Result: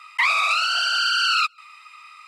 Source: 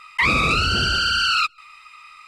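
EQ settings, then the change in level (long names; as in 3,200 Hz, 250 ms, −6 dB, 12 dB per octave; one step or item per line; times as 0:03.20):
Chebyshev high-pass filter 670 Hz, order 5
0.0 dB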